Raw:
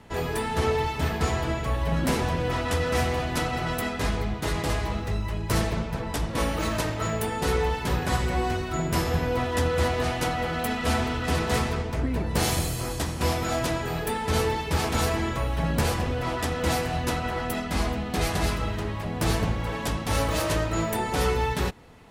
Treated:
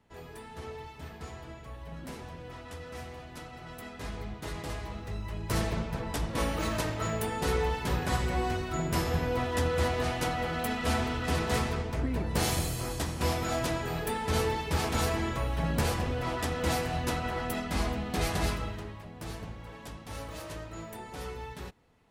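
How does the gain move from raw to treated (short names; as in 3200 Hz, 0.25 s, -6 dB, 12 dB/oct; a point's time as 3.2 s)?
3.59 s -17.5 dB
4.25 s -10.5 dB
4.95 s -10.5 dB
5.7 s -4 dB
18.49 s -4 dB
19.13 s -15.5 dB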